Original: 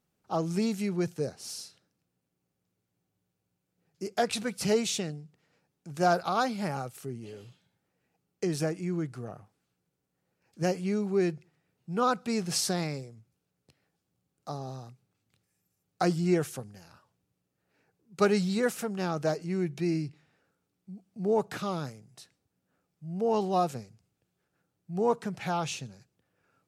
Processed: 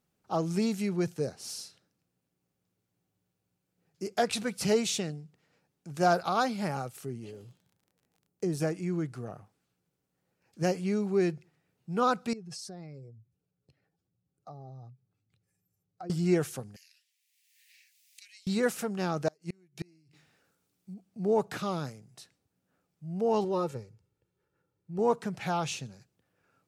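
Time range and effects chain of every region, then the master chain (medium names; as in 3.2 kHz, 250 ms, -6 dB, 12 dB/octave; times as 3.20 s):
7.30–8.60 s: peaking EQ 2.6 kHz -10 dB 2.7 oct + crackle 23 per s -52 dBFS
12.33–16.10 s: spectral contrast enhancement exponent 1.6 + peaking EQ 220 Hz -4.5 dB 0.95 oct + compression 3:1, threshold -44 dBFS
16.76–18.47 s: steep high-pass 1.9 kHz 72 dB/octave + three bands compressed up and down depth 100%
19.28–20.94 s: treble shelf 3.2 kHz +9 dB + inverted gate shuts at -23 dBFS, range -34 dB
23.44–24.99 s: treble shelf 2.2 kHz -9.5 dB + band-stop 730 Hz, Q 5.1 + comb 2.2 ms, depth 50%
whole clip: none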